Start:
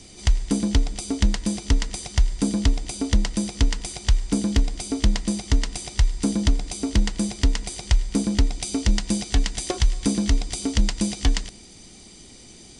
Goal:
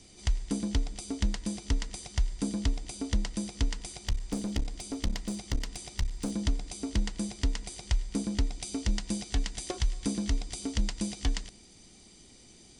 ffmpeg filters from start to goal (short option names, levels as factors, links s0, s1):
-filter_complex "[0:a]asettb=1/sr,asplit=3[s0][s1][s2];[s0]atrim=end=4.074[s3];[s1]atrim=start=4.07:end=6.31,asetpts=PTS-STARTPTS,afade=t=in:d=0.004:c=qsin,afade=t=out:st=2.236:d=0.004:c=qsin,aeval=exprs='clip(val(0),-1,0.0708)':c=same[s4];[s2]atrim=start=6.306[s5];[s3][s4]acrossfade=d=0.004:c1=hsin:c2=qsin[s6];[s6][s5]acrossfade=d=0.004:c1=qsin:c2=hsin,volume=0.355"